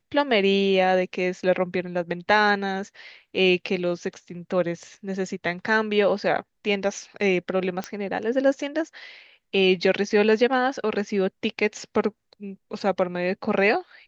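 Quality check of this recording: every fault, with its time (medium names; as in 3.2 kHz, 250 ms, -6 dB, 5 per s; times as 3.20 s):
7.84 s: pop -15 dBFS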